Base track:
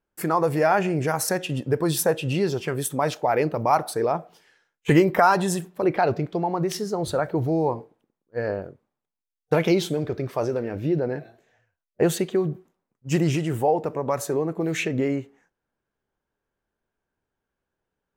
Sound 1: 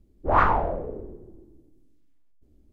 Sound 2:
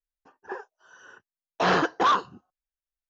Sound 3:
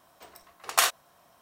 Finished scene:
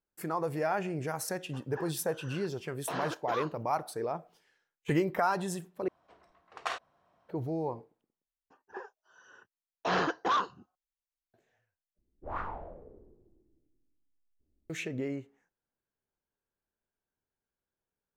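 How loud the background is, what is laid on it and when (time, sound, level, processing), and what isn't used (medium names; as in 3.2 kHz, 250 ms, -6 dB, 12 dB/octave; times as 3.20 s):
base track -11 dB
1.28 s: add 2 -13 dB + three bands compressed up and down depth 70%
5.88 s: replace with 3 -6.5 dB + tape spacing loss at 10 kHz 27 dB
8.25 s: replace with 2 -7 dB
11.98 s: replace with 1 -18 dB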